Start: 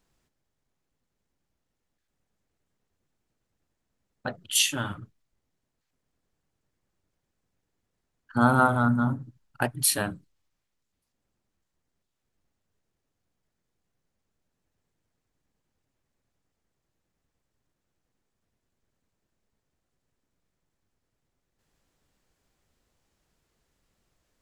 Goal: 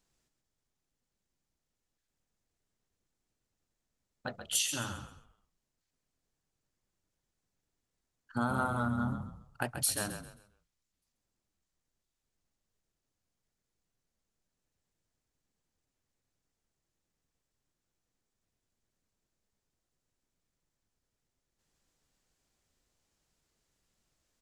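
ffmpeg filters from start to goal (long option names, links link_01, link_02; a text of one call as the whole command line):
ffmpeg -i in.wav -filter_complex "[0:a]equalizer=frequency=6700:width_type=o:width=1.8:gain=6.5,acompressor=threshold=-21dB:ratio=4,asplit=2[link_01][link_02];[link_02]asplit=4[link_03][link_04][link_05][link_06];[link_03]adelay=133,afreqshift=-34,volume=-8.5dB[link_07];[link_04]adelay=266,afreqshift=-68,volume=-18.7dB[link_08];[link_05]adelay=399,afreqshift=-102,volume=-28.8dB[link_09];[link_06]adelay=532,afreqshift=-136,volume=-39dB[link_10];[link_07][link_08][link_09][link_10]amix=inputs=4:normalize=0[link_11];[link_01][link_11]amix=inputs=2:normalize=0,volume=-7dB" out.wav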